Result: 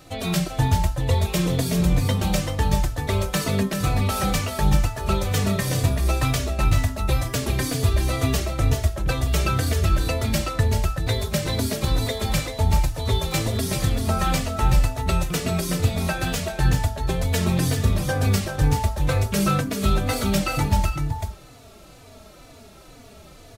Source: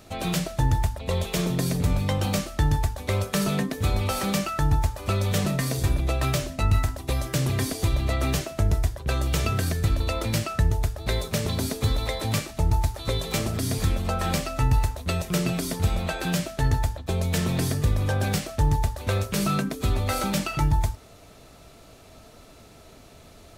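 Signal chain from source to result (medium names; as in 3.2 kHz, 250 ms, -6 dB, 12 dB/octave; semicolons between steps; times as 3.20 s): delay 386 ms -6 dB; endless flanger 3.4 ms -2.1 Hz; trim +5 dB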